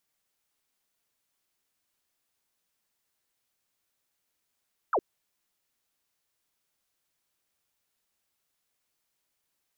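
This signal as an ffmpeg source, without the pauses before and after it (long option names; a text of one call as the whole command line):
ffmpeg -f lavfi -i "aevalsrc='0.0794*clip(t/0.002,0,1)*clip((0.06-t)/0.002,0,1)*sin(2*PI*1500*0.06/log(320/1500)*(exp(log(320/1500)*t/0.06)-1))':duration=0.06:sample_rate=44100" out.wav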